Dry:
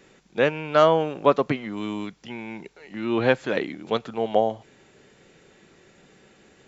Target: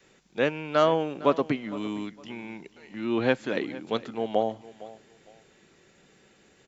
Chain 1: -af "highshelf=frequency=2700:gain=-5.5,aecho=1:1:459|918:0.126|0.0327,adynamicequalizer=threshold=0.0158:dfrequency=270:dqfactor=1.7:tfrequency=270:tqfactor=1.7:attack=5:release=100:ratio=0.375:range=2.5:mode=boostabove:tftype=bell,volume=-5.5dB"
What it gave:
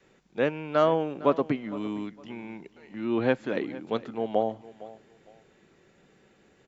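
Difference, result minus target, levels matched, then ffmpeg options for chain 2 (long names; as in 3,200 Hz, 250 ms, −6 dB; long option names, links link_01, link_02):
4,000 Hz band −5.0 dB
-af "highshelf=frequency=2700:gain=4,aecho=1:1:459|918:0.126|0.0327,adynamicequalizer=threshold=0.0158:dfrequency=270:dqfactor=1.7:tfrequency=270:tqfactor=1.7:attack=5:release=100:ratio=0.375:range=2.5:mode=boostabove:tftype=bell,volume=-5.5dB"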